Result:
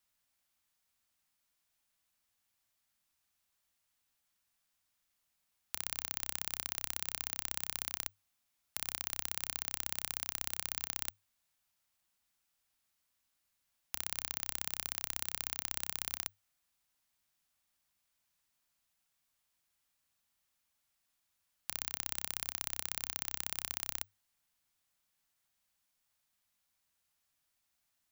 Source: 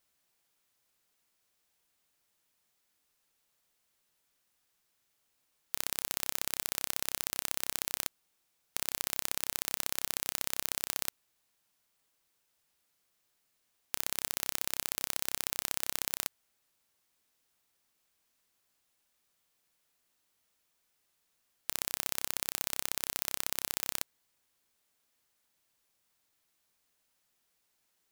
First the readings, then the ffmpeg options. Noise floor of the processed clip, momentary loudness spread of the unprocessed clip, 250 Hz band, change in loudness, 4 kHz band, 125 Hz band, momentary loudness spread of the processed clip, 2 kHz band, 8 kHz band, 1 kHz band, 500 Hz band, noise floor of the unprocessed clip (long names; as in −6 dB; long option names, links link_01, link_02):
−81 dBFS, 4 LU, −6.5 dB, −4.0 dB, −4.0 dB, −3.0 dB, 4 LU, −4.0 dB, −4.0 dB, −4.5 dB, −8.5 dB, −77 dBFS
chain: -af "afreqshift=-100,equalizer=frequency=420:width=2:gain=-9.5,volume=-4dB"